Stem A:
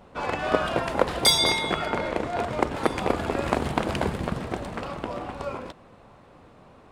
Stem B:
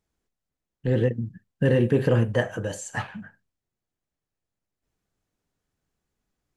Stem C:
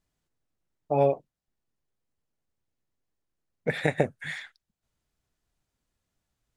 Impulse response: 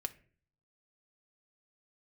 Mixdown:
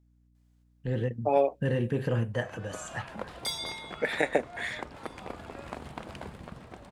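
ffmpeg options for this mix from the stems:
-filter_complex "[0:a]adelay=2200,volume=-14.5dB[link_01];[1:a]volume=-6.5dB,asplit=2[link_02][link_03];[2:a]highpass=frequency=250:width=0.5412,highpass=frequency=250:width=1.3066,adelay=350,volume=0.5dB,asplit=2[link_04][link_05];[link_05]volume=-23.5dB[link_06];[link_03]apad=whole_len=401916[link_07];[link_01][link_07]sidechaincompress=threshold=-40dB:ratio=8:attack=9.1:release=128[link_08];[3:a]atrim=start_sample=2205[link_09];[link_06][link_09]afir=irnorm=-1:irlink=0[link_10];[link_08][link_02][link_04][link_10]amix=inputs=4:normalize=0,equalizer=frequency=370:width=1.2:gain=-3.5,aeval=exprs='val(0)+0.000708*(sin(2*PI*60*n/s)+sin(2*PI*2*60*n/s)/2+sin(2*PI*3*60*n/s)/3+sin(2*PI*4*60*n/s)/4+sin(2*PI*5*60*n/s)/5)':channel_layout=same"

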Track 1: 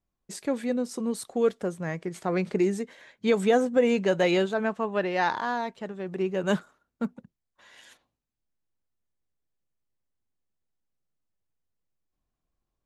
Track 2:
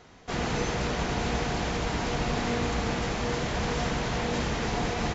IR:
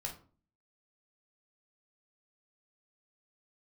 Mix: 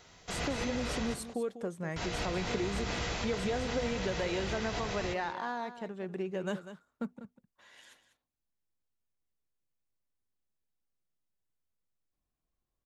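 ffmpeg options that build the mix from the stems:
-filter_complex "[0:a]acompressor=threshold=-27dB:ratio=6,volume=-4.5dB,asplit=3[link_01][link_02][link_03];[link_02]volume=-12.5dB[link_04];[1:a]acrossover=split=4500[link_05][link_06];[link_06]acompressor=threshold=-49dB:ratio=4:attack=1:release=60[link_07];[link_05][link_07]amix=inputs=2:normalize=0,highshelf=frequency=2500:gain=12,volume=-10.5dB,asplit=3[link_08][link_09][link_10];[link_08]atrim=end=1.14,asetpts=PTS-STARTPTS,afade=type=out:start_time=1.136:duration=0.004:curve=hsin[link_11];[link_09]atrim=start=1.14:end=1.96,asetpts=PTS-STARTPTS,volume=0[link_12];[link_10]atrim=start=1.96,asetpts=PTS-STARTPTS,afade=type=in:duration=0.004:curve=hsin[link_13];[link_11][link_12][link_13]concat=n=3:v=0:a=1,asplit=3[link_14][link_15][link_16];[link_15]volume=-4dB[link_17];[link_16]volume=-16dB[link_18];[link_03]apad=whole_len=226772[link_19];[link_14][link_19]sidechaincompress=threshold=-43dB:ratio=8:attack=16:release=103[link_20];[2:a]atrim=start_sample=2205[link_21];[link_17][link_21]afir=irnorm=-1:irlink=0[link_22];[link_04][link_18]amix=inputs=2:normalize=0,aecho=0:1:196:1[link_23];[link_01][link_20][link_22][link_23]amix=inputs=4:normalize=0"

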